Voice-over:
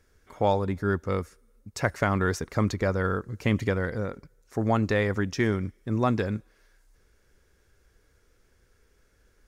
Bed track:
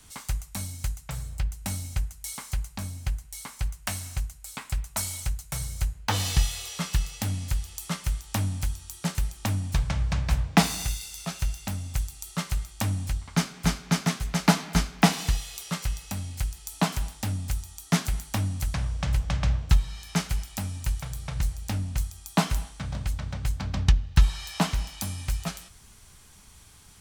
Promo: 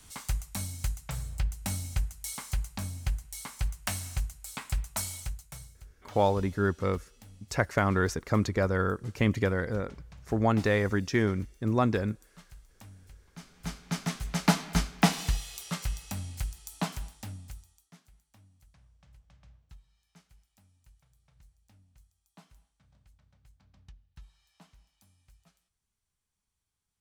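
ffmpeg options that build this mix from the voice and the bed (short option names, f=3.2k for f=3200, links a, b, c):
-filter_complex "[0:a]adelay=5750,volume=-1dB[a];[1:a]volume=18.5dB,afade=t=out:st=4.77:d=1:silence=0.0794328,afade=t=in:st=13.38:d=1.07:silence=0.1,afade=t=out:st=16.2:d=1.72:silence=0.0334965[b];[a][b]amix=inputs=2:normalize=0"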